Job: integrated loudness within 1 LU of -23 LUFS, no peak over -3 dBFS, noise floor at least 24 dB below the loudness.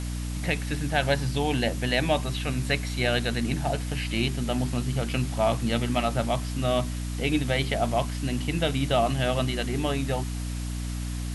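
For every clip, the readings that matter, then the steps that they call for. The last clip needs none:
hum 60 Hz; highest harmonic 300 Hz; hum level -29 dBFS; noise floor -31 dBFS; noise floor target -51 dBFS; loudness -27.0 LUFS; peak level -9.5 dBFS; loudness target -23.0 LUFS
-> hum notches 60/120/180/240/300 Hz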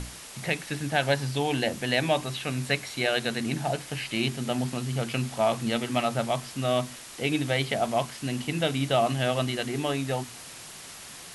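hum not found; noise floor -44 dBFS; noise floor target -52 dBFS
-> noise reduction 8 dB, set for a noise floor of -44 dBFS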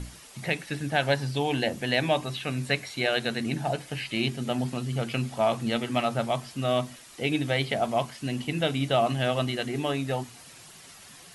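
noise floor -49 dBFS; noise floor target -52 dBFS
-> noise reduction 6 dB, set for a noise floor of -49 dBFS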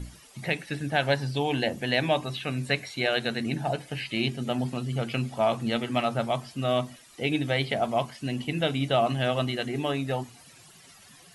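noise floor -53 dBFS; loudness -28.0 LUFS; peak level -10.0 dBFS; loudness target -23.0 LUFS
-> trim +5 dB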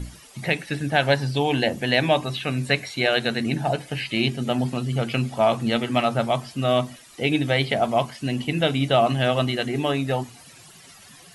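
loudness -23.0 LUFS; peak level -5.0 dBFS; noise floor -48 dBFS

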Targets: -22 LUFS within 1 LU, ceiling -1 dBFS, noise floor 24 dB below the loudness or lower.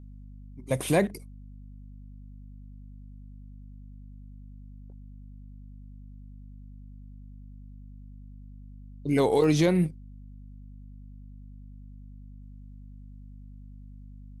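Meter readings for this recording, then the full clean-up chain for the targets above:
dropouts 1; longest dropout 1.1 ms; hum 50 Hz; highest harmonic 250 Hz; hum level -43 dBFS; loudness -25.5 LUFS; peak level -11.0 dBFS; loudness target -22.0 LUFS
-> interpolate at 9.44 s, 1.1 ms; de-hum 50 Hz, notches 5; trim +3.5 dB

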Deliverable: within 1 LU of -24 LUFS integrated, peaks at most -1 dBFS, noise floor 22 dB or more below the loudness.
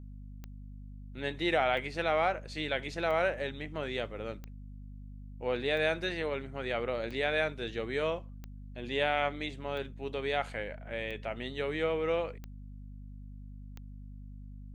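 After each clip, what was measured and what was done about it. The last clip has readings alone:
clicks found 11; hum 50 Hz; highest harmonic 250 Hz; hum level -43 dBFS; loudness -33.0 LUFS; peak level -15.0 dBFS; loudness target -24.0 LUFS
-> de-click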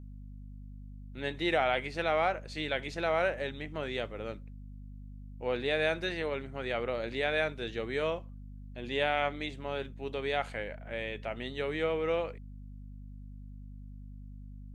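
clicks found 0; hum 50 Hz; highest harmonic 250 Hz; hum level -43 dBFS
-> de-hum 50 Hz, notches 5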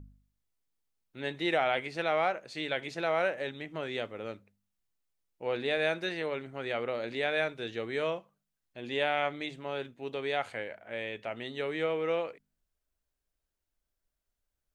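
hum not found; loudness -33.0 LUFS; peak level -15.0 dBFS; loudness target -24.0 LUFS
-> trim +9 dB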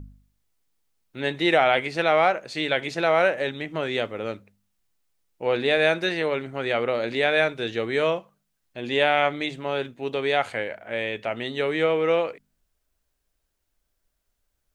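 loudness -24.0 LUFS; peak level -6.0 dBFS; noise floor -76 dBFS

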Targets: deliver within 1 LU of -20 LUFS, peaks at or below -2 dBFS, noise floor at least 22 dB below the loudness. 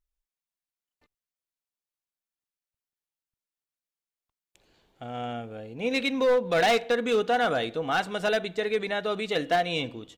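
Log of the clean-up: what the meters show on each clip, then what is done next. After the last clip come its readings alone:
clipped samples 1.0%; clipping level -18.0 dBFS; loudness -26.5 LUFS; peak level -18.0 dBFS; loudness target -20.0 LUFS
-> clip repair -18 dBFS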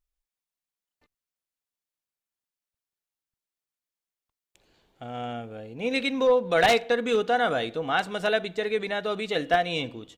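clipped samples 0.0%; loudness -25.5 LUFS; peak level -9.0 dBFS; loudness target -20.0 LUFS
-> trim +5.5 dB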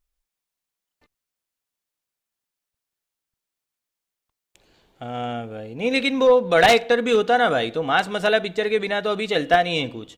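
loudness -20.0 LUFS; peak level -3.5 dBFS; noise floor -86 dBFS

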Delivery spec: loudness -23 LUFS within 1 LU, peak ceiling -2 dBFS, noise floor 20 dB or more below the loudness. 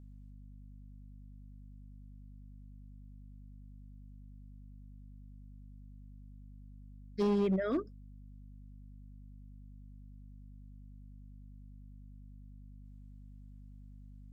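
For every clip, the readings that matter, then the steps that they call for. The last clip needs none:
clipped samples 0.4%; clipping level -25.0 dBFS; hum 50 Hz; highest harmonic 250 Hz; hum level -49 dBFS; loudness -33.0 LUFS; peak level -25.0 dBFS; loudness target -23.0 LUFS
-> clip repair -25 dBFS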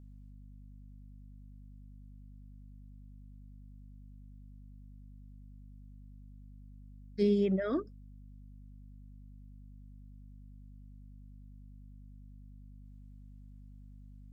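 clipped samples 0.0%; hum 50 Hz; highest harmonic 250 Hz; hum level -49 dBFS
-> de-hum 50 Hz, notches 5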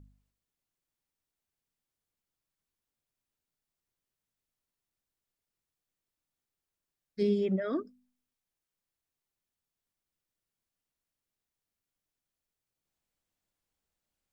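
hum not found; loudness -31.0 LUFS; peak level -19.0 dBFS; loudness target -23.0 LUFS
-> trim +8 dB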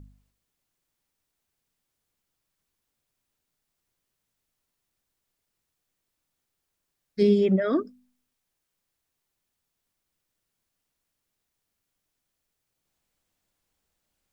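loudness -23.0 LUFS; peak level -11.0 dBFS; noise floor -82 dBFS

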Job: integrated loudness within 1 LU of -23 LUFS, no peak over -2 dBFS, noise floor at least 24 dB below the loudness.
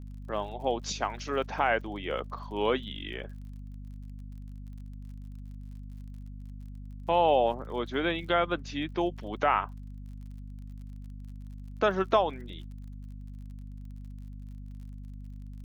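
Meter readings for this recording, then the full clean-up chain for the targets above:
tick rate 42 per s; hum 50 Hz; highest harmonic 250 Hz; hum level -40 dBFS; loudness -29.5 LUFS; peak level -11.0 dBFS; loudness target -23.0 LUFS
-> de-click; hum notches 50/100/150/200/250 Hz; trim +6.5 dB

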